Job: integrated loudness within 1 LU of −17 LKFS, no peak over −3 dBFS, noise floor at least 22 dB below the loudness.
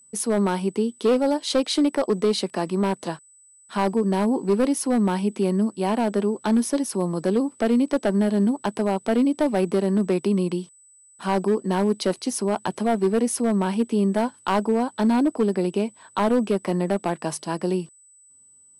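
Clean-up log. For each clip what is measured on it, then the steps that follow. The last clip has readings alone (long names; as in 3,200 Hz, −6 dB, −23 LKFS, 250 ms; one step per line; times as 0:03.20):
share of clipped samples 1.9%; peaks flattened at −14.0 dBFS; interfering tone 8,000 Hz; level of the tone −51 dBFS; integrated loudness −23.0 LKFS; sample peak −14.0 dBFS; target loudness −17.0 LKFS
→ clipped peaks rebuilt −14 dBFS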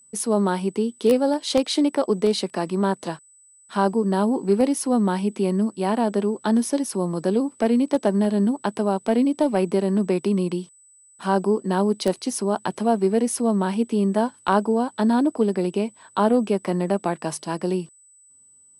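share of clipped samples 0.0%; interfering tone 8,000 Hz; level of the tone −51 dBFS
→ notch filter 8,000 Hz, Q 30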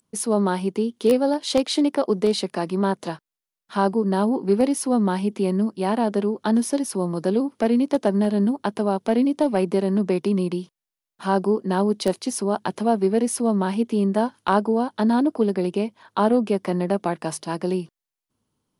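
interfering tone none found; integrated loudness −22.5 LKFS; sample peak −5.0 dBFS; target loudness −17.0 LKFS
→ level +5.5 dB
brickwall limiter −3 dBFS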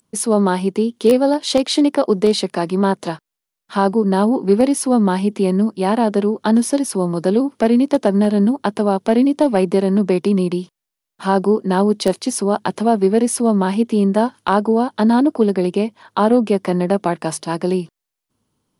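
integrated loudness −17.0 LKFS; sample peak −3.0 dBFS; background noise floor −83 dBFS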